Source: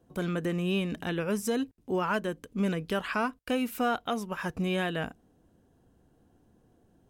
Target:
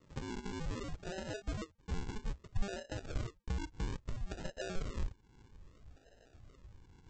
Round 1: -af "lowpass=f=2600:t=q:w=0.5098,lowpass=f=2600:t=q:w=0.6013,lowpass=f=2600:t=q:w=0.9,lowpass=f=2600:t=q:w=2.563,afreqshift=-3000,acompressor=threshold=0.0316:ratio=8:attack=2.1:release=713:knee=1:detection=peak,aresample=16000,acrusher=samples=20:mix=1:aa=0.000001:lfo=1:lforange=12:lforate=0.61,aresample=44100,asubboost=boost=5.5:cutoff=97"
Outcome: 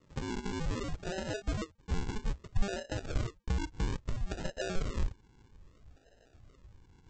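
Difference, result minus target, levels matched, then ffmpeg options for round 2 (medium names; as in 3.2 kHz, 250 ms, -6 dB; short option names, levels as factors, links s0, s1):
compression: peak gain reduction -5.5 dB
-af "lowpass=f=2600:t=q:w=0.5098,lowpass=f=2600:t=q:w=0.6013,lowpass=f=2600:t=q:w=0.9,lowpass=f=2600:t=q:w=2.563,afreqshift=-3000,acompressor=threshold=0.0158:ratio=8:attack=2.1:release=713:knee=1:detection=peak,aresample=16000,acrusher=samples=20:mix=1:aa=0.000001:lfo=1:lforange=12:lforate=0.61,aresample=44100,asubboost=boost=5.5:cutoff=97"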